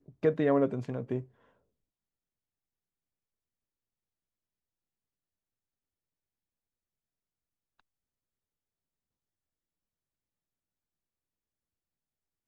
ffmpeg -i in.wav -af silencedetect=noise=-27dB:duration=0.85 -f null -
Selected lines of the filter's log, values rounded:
silence_start: 1.18
silence_end: 12.47 | silence_duration: 11.29